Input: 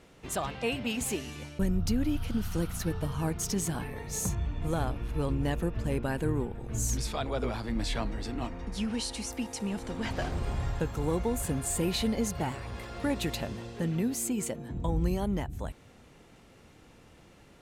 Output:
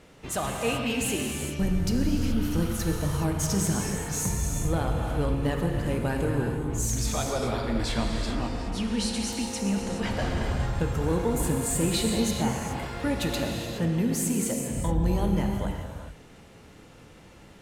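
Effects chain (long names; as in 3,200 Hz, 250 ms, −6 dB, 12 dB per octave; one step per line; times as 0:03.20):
soft clipping −21 dBFS, distortion −21 dB
reverb whose tail is shaped and stops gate 450 ms flat, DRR 1 dB
level +3 dB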